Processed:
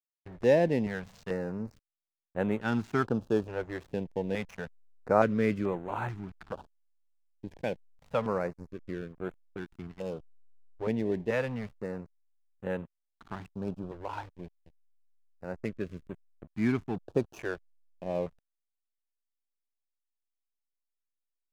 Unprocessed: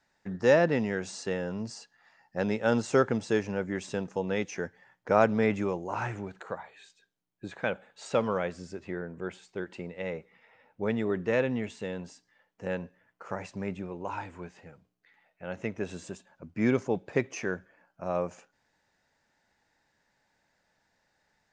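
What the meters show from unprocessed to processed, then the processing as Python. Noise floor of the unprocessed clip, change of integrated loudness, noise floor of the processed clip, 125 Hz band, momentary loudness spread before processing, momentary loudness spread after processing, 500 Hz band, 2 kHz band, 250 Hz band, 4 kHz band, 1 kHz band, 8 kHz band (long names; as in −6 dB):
−75 dBFS, −1.5 dB, below −85 dBFS, −0.5 dB, 16 LU, 16 LU, −2.0 dB, −4.5 dB, −1.0 dB, −5.5 dB, −2.0 dB, below −10 dB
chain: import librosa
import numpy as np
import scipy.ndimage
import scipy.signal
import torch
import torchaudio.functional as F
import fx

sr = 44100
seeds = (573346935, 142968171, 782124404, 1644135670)

y = fx.high_shelf(x, sr, hz=5200.0, db=-10.0)
y = fx.backlash(y, sr, play_db=-36.0)
y = fx.filter_held_notch(y, sr, hz=2.3, low_hz=210.0, high_hz=5100.0)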